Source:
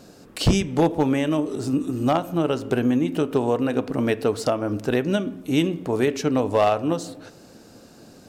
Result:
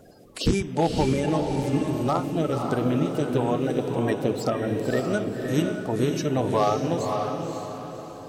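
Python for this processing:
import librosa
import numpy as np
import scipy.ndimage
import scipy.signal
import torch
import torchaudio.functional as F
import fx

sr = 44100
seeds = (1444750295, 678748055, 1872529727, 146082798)

y = fx.spec_quant(x, sr, step_db=30)
y = fx.vibrato(y, sr, rate_hz=4.3, depth_cents=15.0)
y = fx.echo_diffused(y, sr, ms=548, feedback_pct=42, wet_db=-4)
y = F.gain(torch.from_numpy(y), -3.0).numpy()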